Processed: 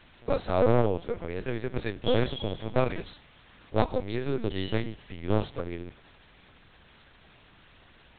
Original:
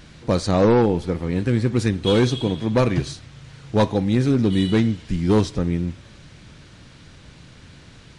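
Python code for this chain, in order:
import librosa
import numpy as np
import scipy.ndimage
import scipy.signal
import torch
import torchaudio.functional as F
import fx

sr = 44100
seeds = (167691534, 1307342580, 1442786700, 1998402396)

y = scipy.signal.sosfilt(scipy.signal.cheby1(2, 1.0, 440.0, 'highpass', fs=sr, output='sos'), x)
y = fx.lpc_vocoder(y, sr, seeds[0], excitation='pitch_kept', order=8)
y = F.gain(torch.from_numpy(y), -3.5).numpy()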